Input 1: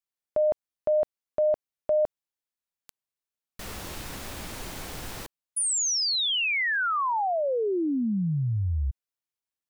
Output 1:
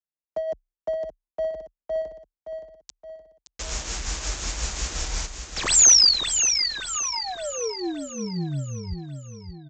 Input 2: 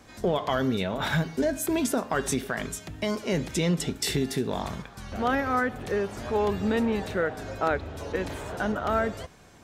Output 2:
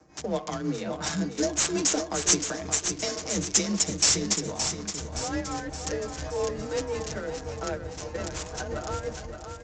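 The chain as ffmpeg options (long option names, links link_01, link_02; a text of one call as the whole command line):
ffmpeg -i in.wav -filter_complex "[0:a]asubboost=boost=5:cutoff=66,aecho=1:1:6.8:0.76,acrossover=split=180|620|3100[link_01][link_02][link_03][link_04];[link_03]acompressor=threshold=-35dB:ratio=6:attack=48:release=110[link_05];[link_01][link_02][link_05][link_04]amix=inputs=4:normalize=0,afreqshift=31,aexciter=amount=13.4:drive=7:freq=5200,tremolo=f=5.6:d=0.45,volume=6dB,asoftclip=hard,volume=-6dB,adynamicsmooth=sensitivity=5.5:basefreq=1100,aecho=1:1:570|1140|1710|2280|2850|3420:0.398|0.195|0.0956|0.0468|0.023|0.0112,aresample=16000,aresample=44100,volume=-3dB" out.wav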